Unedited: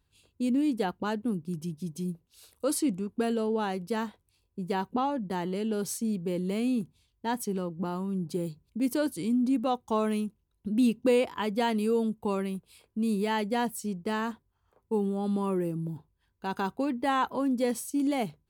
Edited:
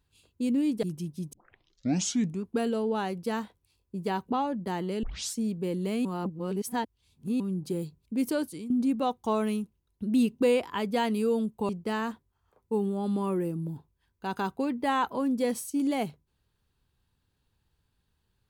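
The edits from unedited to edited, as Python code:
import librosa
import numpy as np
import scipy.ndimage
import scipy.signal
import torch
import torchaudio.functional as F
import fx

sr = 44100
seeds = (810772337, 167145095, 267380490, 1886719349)

y = fx.edit(x, sr, fx.cut(start_s=0.83, length_s=0.64),
    fx.tape_start(start_s=1.97, length_s=1.08),
    fx.tape_start(start_s=5.67, length_s=0.32),
    fx.reverse_span(start_s=6.69, length_s=1.35),
    fx.fade_out_to(start_s=8.85, length_s=0.49, curve='qsin', floor_db=-14.0),
    fx.cut(start_s=12.33, length_s=1.56), tone=tone)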